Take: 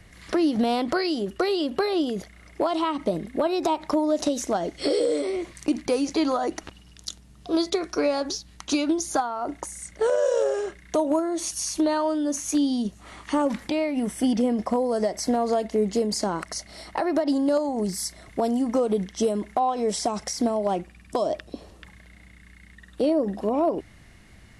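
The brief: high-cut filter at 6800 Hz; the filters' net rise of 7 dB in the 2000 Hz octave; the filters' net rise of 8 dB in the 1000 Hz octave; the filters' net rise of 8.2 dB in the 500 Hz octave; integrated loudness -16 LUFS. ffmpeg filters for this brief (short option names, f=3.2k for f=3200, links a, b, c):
-af "lowpass=6.8k,equalizer=f=500:t=o:g=8,equalizer=f=1k:t=o:g=6,equalizer=f=2k:t=o:g=6.5,volume=3dB"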